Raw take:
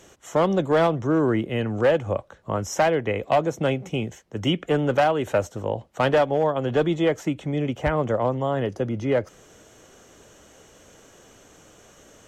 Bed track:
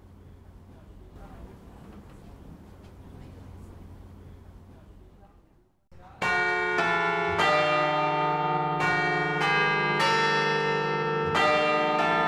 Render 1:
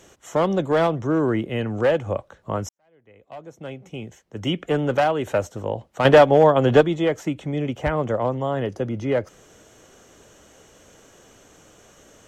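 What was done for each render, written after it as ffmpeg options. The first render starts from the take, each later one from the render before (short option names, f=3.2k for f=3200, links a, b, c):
-filter_complex "[0:a]asplit=4[a][b][c][d];[a]atrim=end=2.69,asetpts=PTS-STARTPTS,afade=t=out:st=2.686:d=0.004:c=hsin[e];[b]atrim=start=2.69:end=6.052,asetpts=PTS-STARTPTS,afade=t=in:d=1.97:c=qua[f];[c]atrim=start=6.048:end=6.812,asetpts=PTS-STARTPTS,volume=7.5dB[g];[d]atrim=start=6.808[h];[e][f]concat=n=2:v=0:a=1[i];[i][g]acrossfade=d=0.004:c1=hsin:c2=hsin[j];[j][h]acrossfade=d=0.004:c1=hsin:c2=hsin"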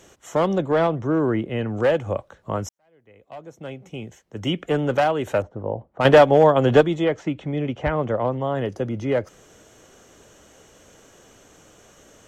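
-filter_complex "[0:a]asettb=1/sr,asplit=3[a][b][c];[a]atrim=end=0.584[d];[b]atrim=start=0.58:end=1.77,asetpts=PTS-STARTPTS,afade=t=in:d=0.004:c=qsin,afade=t=out:st=1.186:d=0.004:c=qsin,lowpass=f=3.1k:p=1[e];[c]atrim=start=1.766[f];[d][e]acrossfade=d=0.004:c1=hsin:c2=qsin[g];[g][f]acrossfade=d=0.004:c1=qsin:c2=hsin,asettb=1/sr,asplit=3[h][i][j];[h]atrim=end=5.424[k];[i]atrim=start=5.42:end=6.01,asetpts=PTS-STARTPTS,afade=t=in:d=0.004:c=qsin,afade=t=out:st=0.586:d=0.004:c=qsin,lowpass=1k[l];[j]atrim=start=6.006[m];[k][l]acrossfade=d=0.004:c1=hsin:c2=qsin[n];[n][m]acrossfade=d=0.004:c1=qsin:c2=hsin,asettb=1/sr,asplit=3[o][p][q];[o]atrim=end=7.044[r];[p]atrim=start=7.04:end=8.55,asetpts=PTS-STARTPTS,afade=t=in:d=0.004:c=qsin,afade=t=out:st=1.506:d=0.004:c=qsin,lowpass=4.3k[s];[q]atrim=start=8.546[t];[r][s]acrossfade=d=0.004:c1=hsin:c2=qsin[u];[u][t]acrossfade=d=0.004:c1=qsin:c2=hsin"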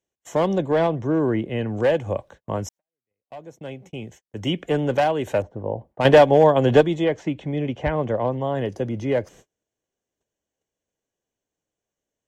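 -af "agate=range=-35dB:threshold=-45dB:ratio=16:detection=peak,equalizer=f=1.3k:t=o:w=0.21:g=-12"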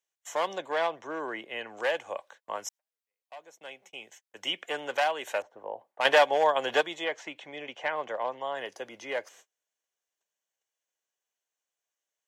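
-af "highpass=980"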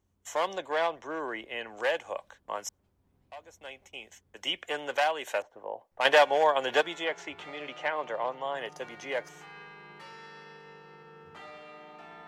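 -filter_complex "[1:a]volume=-24.5dB[a];[0:a][a]amix=inputs=2:normalize=0"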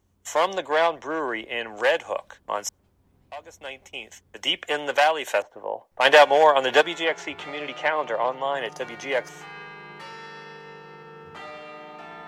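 -af "volume=7.5dB,alimiter=limit=-2dB:level=0:latency=1"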